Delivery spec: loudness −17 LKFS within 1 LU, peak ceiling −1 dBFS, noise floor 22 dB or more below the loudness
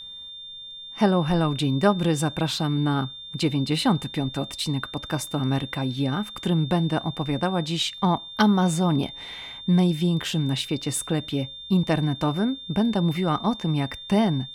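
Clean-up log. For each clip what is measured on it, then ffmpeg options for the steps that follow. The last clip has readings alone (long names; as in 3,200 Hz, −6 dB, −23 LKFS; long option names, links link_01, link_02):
interfering tone 3,600 Hz; level of the tone −37 dBFS; integrated loudness −24.5 LKFS; sample peak −7.5 dBFS; target loudness −17.0 LKFS
→ -af "bandreject=frequency=3600:width=30"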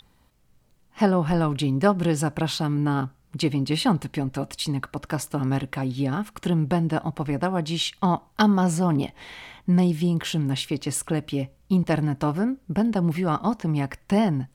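interfering tone none found; integrated loudness −24.5 LKFS; sample peak −7.0 dBFS; target loudness −17.0 LKFS
→ -af "volume=7.5dB,alimiter=limit=-1dB:level=0:latency=1"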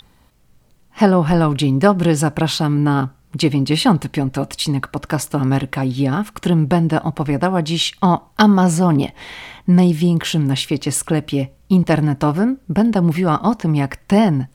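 integrated loudness −17.0 LKFS; sample peak −1.0 dBFS; background noise floor −53 dBFS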